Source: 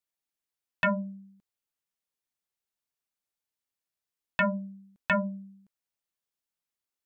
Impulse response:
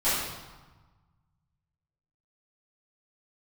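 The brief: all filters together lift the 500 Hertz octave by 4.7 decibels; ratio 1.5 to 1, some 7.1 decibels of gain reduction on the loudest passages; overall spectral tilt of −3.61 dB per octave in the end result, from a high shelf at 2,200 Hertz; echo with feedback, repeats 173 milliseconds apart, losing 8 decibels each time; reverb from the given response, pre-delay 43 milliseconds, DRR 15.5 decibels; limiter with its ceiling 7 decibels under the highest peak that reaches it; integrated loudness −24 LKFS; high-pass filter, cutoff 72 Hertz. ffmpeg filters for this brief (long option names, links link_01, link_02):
-filter_complex "[0:a]highpass=72,equalizer=frequency=500:width_type=o:gain=6.5,highshelf=frequency=2200:gain=-4.5,acompressor=threshold=-41dB:ratio=1.5,alimiter=level_in=3dB:limit=-24dB:level=0:latency=1,volume=-3dB,aecho=1:1:173|346|519|692|865:0.398|0.159|0.0637|0.0255|0.0102,asplit=2[link_01][link_02];[1:a]atrim=start_sample=2205,adelay=43[link_03];[link_02][link_03]afir=irnorm=-1:irlink=0,volume=-29dB[link_04];[link_01][link_04]amix=inputs=2:normalize=0,volume=14.5dB"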